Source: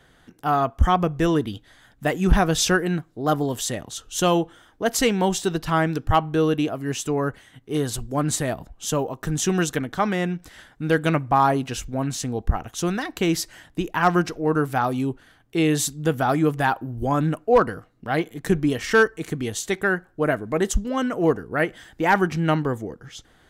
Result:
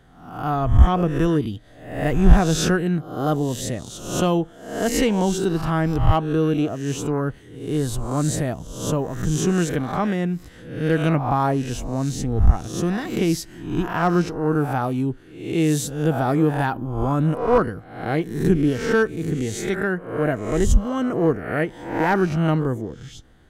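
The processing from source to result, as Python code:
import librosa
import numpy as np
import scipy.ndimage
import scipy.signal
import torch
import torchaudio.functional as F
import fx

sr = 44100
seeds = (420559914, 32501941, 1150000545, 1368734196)

y = fx.spec_swells(x, sr, rise_s=0.65)
y = fx.low_shelf(y, sr, hz=410.0, db=11.0)
y = y * 10.0 ** (-6.5 / 20.0)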